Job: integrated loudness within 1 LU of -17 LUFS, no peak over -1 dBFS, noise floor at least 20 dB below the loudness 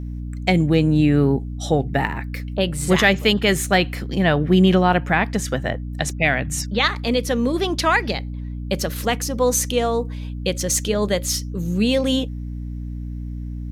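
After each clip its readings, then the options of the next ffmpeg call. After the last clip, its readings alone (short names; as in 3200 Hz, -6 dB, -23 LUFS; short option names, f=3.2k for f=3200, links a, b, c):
hum 60 Hz; harmonics up to 300 Hz; hum level -27 dBFS; loudness -20.0 LUFS; peak -3.0 dBFS; loudness target -17.0 LUFS
-> -af "bandreject=f=60:t=h:w=4,bandreject=f=120:t=h:w=4,bandreject=f=180:t=h:w=4,bandreject=f=240:t=h:w=4,bandreject=f=300:t=h:w=4"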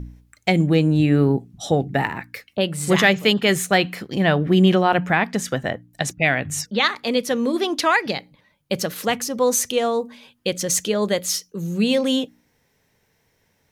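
hum none; loudness -20.5 LUFS; peak -3.5 dBFS; loudness target -17.0 LUFS
-> -af "volume=3.5dB,alimiter=limit=-1dB:level=0:latency=1"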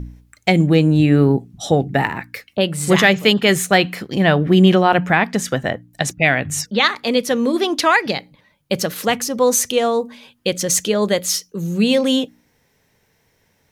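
loudness -17.0 LUFS; peak -1.0 dBFS; noise floor -63 dBFS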